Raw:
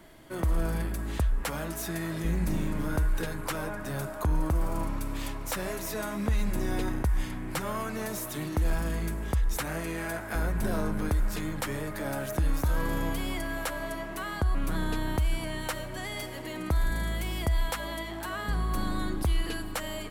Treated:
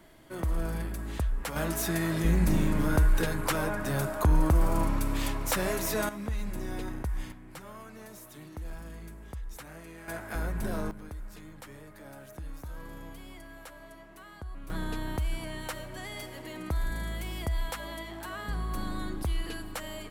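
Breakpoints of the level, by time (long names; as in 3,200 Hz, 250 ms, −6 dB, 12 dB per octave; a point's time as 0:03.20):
−3 dB
from 0:01.56 +4 dB
from 0:06.09 −6 dB
from 0:07.32 −13 dB
from 0:10.08 −3.5 dB
from 0:10.91 −14.5 dB
from 0:14.70 −4 dB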